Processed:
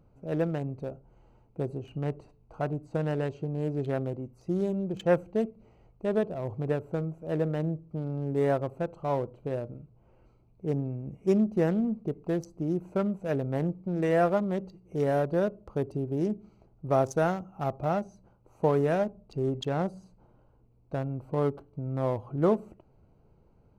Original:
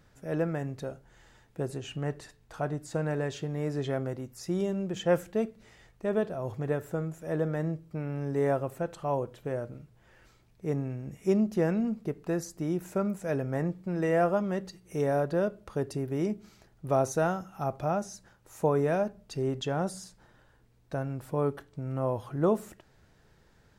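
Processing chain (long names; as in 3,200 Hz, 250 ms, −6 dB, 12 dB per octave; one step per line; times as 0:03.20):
adaptive Wiener filter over 25 samples
level +1.5 dB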